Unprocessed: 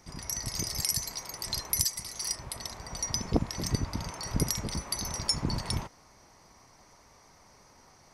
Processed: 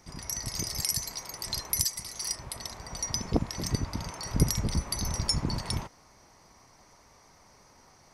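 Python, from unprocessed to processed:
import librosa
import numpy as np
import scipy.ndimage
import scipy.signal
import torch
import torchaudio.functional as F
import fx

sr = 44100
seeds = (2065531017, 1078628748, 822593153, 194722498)

y = fx.low_shelf(x, sr, hz=200.0, db=9.0, at=(4.38, 5.41))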